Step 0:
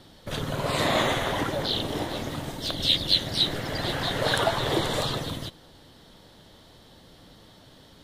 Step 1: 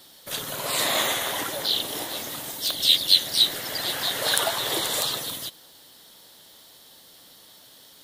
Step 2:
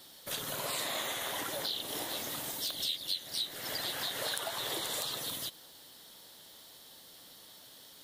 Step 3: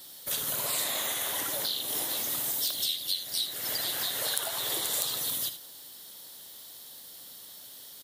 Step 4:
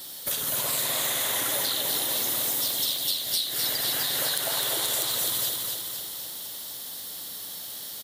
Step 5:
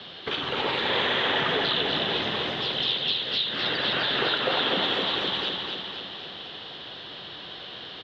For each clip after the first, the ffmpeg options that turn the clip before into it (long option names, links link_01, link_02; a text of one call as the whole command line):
ffmpeg -i in.wav -af "aemphasis=mode=production:type=riaa,volume=-2dB" out.wav
ffmpeg -i in.wav -af "acompressor=threshold=-30dB:ratio=5,volume=-3.5dB" out.wav
ffmpeg -i in.wav -filter_complex "[0:a]asplit=2[link_01][link_02];[link_02]aecho=0:1:61|78:0.168|0.237[link_03];[link_01][link_03]amix=inputs=2:normalize=0,crystalizer=i=1.5:c=0" out.wav
ffmpeg -i in.wav -filter_complex "[0:a]acompressor=threshold=-33dB:ratio=6,asplit=2[link_01][link_02];[link_02]aecho=0:1:255|510|765|1020|1275|1530|1785|2040:0.631|0.372|0.22|0.13|0.0765|0.0451|0.0266|0.0157[link_03];[link_01][link_03]amix=inputs=2:normalize=0,volume=7.5dB" out.wav
ffmpeg -i in.wav -af "highpass=180,highpass=frequency=250:width_type=q:width=0.5412,highpass=frequency=250:width_type=q:width=1.307,lowpass=frequency=3600:width_type=q:width=0.5176,lowpass=frequency=3600:width_type=q:width=0.7071,lowpass=frequency=3600:width_type=q:width=1.932,afreqshift=-140,volume=8dB" out.wav